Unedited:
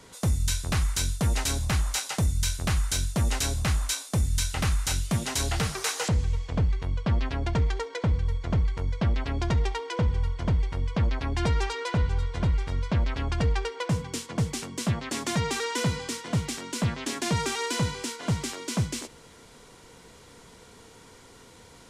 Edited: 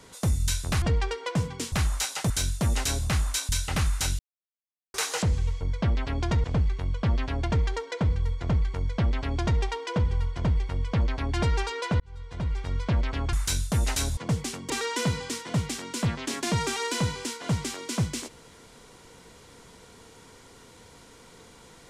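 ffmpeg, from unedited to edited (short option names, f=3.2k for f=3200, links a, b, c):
-filter_complex "[0:a]asplit=13[a][b][c][d][e][f][g][h][i][j][k][l][m];[a]atrim=end=0.822[n];[b]atrim=start=13.358:end=14.262[o];[c]atrim=start=1.658:end=2.242[p];[d]atrim=start=2.848:end=4.042[q];[e]atrim=start=4.348:end=5.05,asetpts=PTS-STARTPTS,afade=t=out:st=0.698:d=0.004:c=hsin[r];[f]atrim=start=5.05:end=5.8,asetpts=PTS-STARTPTS,volume=0[s];[g]atrim=start=5.8:end=6.472,asetpts=PTS-STARTPTS,afade=t=in:d=0.004:c=hsin[t];[h]atrim=start=8.798:end=9.632[u];[i]atrim=start=6.468:end=12.03,asetpts=PTS-STARTPTS,afade=t=out:st=5.558:d=0.004:c=hsin[v];[j]atrim=start=12.03:end=13.362,asetpts=PTS-STARTPTS,afade=t=in:d=0.79[w];[k]atrim=start=0.818:end=1.662[x];[l]atrim=start=14.258:end=14.792[y];[m]atrim=start=15.488[z];[n][o]acrossfade=d=0.004:c1=hsin:c2=hsin[aa];[aa][p]acrossfade=d=0.004:c1=hsin:c2=hsin[ab];[ab][q]acrossfade=d=0.004:c1=hsin:c2=hsin[ac];[r][s][t]concat=n=3:v=0:a=1[ad];[ac][ad]acrossfade=d=0.004:c1=hsin:c2=hsin[ae];[ae][u]acrossfade=d=0.004:c1=hsin:c2=hsin[af];[v][w]concat=n=2:v=0:a=1[ag];[af][ag]acrossfade=d=0.004:c1=hsin:c2=hsin[ah];[ah][x]acrossfade=d=0.004:c1=hsin:c2=hsin[ai];[ai][y]acrossfade=d=0.004:c1=hsin:c2=hsin[aj];[aj][z]acrossfade=d=0.004:c1=hsin:c2=hsin"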